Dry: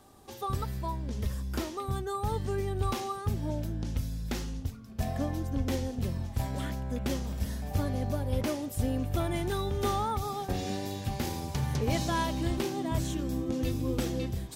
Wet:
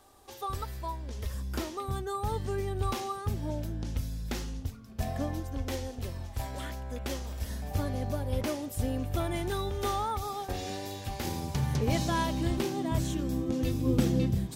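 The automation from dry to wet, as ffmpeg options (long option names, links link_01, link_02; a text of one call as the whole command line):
ffmpeg -i in.wav -af "asetnsamples=nb_out_samples=441:pad=0,asendcmd='1.34 equalizer g -3;5.4 equalizer g -12;7.5 equalizer g -3.5;9.71 equalizer g -9.5;11.25 equalizer g 2;13.86 equalizer g 10.5',equalizer=frequency=170:width_type=o:width=1.4:gain=-13" out.wav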